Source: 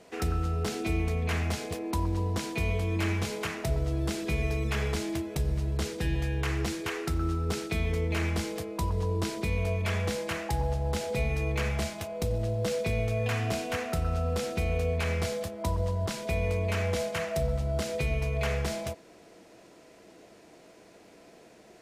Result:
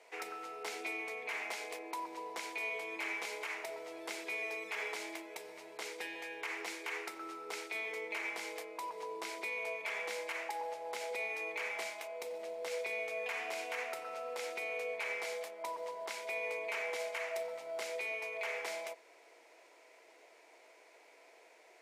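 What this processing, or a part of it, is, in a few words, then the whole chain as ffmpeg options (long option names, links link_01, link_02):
laptop speaker: -af "highpass=frequency=430:width=0.5412,highpass=frequency=430:width=1.3066,equalizer=frequency=910:width_type=o:width=0.24:gain=7.5,equalizer=frequency=2200:width_type=o:width=0.38:gain=10.5,alimiter=limit=-22dB:level=0:latency=1:release=51,volume=-7dB"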